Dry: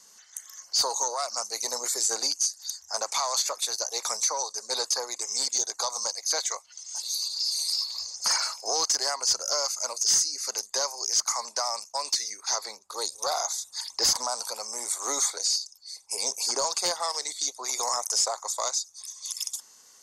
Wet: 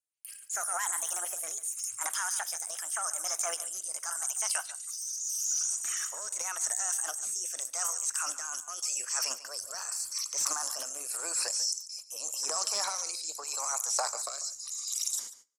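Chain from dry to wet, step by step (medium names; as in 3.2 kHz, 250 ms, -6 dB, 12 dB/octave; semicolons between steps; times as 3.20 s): gliding tape speed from 149% -> 108%; gate -45 dBFS, range -40 dB; peaking EQ 5.7 kHz +6 dB 2 oct; reverse; compression, threshold -28 dBFS, peak gain reduction 13 dB; reverse; rotary cabinet horn 0.85 Hz; transient shaper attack -2 dB, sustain +10 dB; delay 143 ms -15 dB; on a send at -22.5 dB: reverberation RT60 0.45 s, pre-delay 38 ms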